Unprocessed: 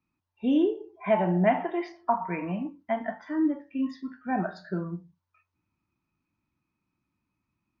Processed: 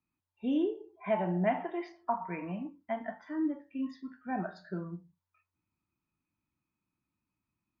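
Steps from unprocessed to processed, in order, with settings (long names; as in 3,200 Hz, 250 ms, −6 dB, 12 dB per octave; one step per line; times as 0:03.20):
notch filter 5,500 Hz, Q 19
level −6.5 dB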